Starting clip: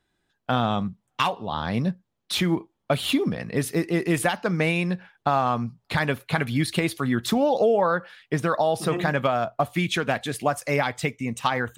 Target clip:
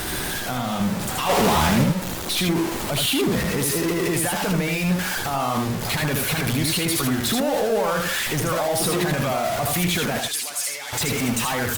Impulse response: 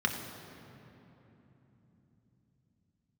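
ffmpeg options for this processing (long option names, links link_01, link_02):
-filter_complex "[0:a]aeval=exprs='val(0)+0.5*0.0794*sgn(val(0))':channel_layout=same,highshelf=frequency=6200:gain=6,alimiter=limit=-16.5dB:level=0:latency=1:release=24,asettb=1/sr,asplit=3[link_01][link_02][link_03];[link_01]atrim=end=1.294[link_04];[link_02]atrim=start=1.29:end=1.84,asetpts=PTS-STARTPTS,afade=type=in:duration=0.004:curve=qsin,afade=type=out:start_time=0.546:duration=0.004:curve=qsin,acontrast=85[link_05];[link_03]atrim=start=1.836[link_06];[link_04][link_05]acrossfade=duration=0.004:curve1=hsin:curve2=qsin[link_07];[link_07][link_06]acrossfade=duration=0.004:curve1=qsin:curve2=hsin,asettb=1/sr,asplit=3[link_08][link_09][link_10];[link_08]atrim=end=10.204[link_11];[link_09]atrim=start=10.2:end=10.93,asetpts=PTS-STARTPTS,afade=type=in:duration=0.004:curve=qsin,afade=type=out:start_time=0.726:duration=0.004:curve=qsin,bandpass=frequency=6400:width_type=q:width=0.56:csg=0[link_12];[link_10]atrim=start=10.926[link_13];[link_11][link_12]acrossfade=duration=0.004:curve1=hsin:curve2=qsin[link_14];[link_14][link_13]acrossfade=duration=0.004:curve1=qsin:curve2=hsin,asoftclip=type=tanh:threshold=-14.5dB,aecho=1:1:79:0.668" -ar 48000 -c:a libopus -b:a 32k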